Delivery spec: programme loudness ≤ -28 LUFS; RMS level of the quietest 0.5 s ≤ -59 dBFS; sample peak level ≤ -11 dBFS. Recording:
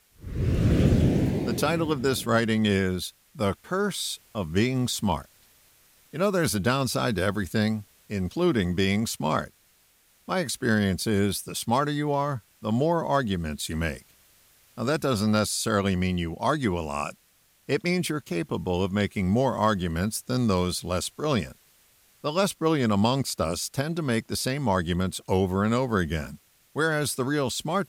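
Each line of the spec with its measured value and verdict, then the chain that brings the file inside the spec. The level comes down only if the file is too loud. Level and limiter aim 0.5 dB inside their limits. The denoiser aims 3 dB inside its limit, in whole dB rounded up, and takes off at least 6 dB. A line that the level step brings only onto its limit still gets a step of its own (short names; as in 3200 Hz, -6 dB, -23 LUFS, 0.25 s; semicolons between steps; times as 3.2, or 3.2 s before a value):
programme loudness -26.0 LUFS: fail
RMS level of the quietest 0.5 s -63 dBFS: OK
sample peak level -10.0 dBFS: fail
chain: gain -2.5 dB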